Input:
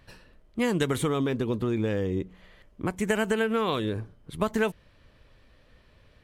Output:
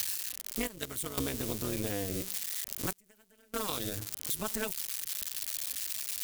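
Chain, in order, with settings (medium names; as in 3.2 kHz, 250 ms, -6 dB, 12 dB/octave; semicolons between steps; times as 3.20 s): zero-crossing glitches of -22.5 dBFS; high-pass 56 Hz; band-stop 390 Hz, Q 12; 0.67–1.18 s: gate -21 dBFS, range -16 dB; treble shelf 2.8 kHz +10 dB; compression 6:1, threshold -29 dBFS, peak gain reduction 12 dB; AM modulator 200 Hz, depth 80%; 2.91–3.54 s: inverted gate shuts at -26 dBFS, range -29 dB; trim +3 dB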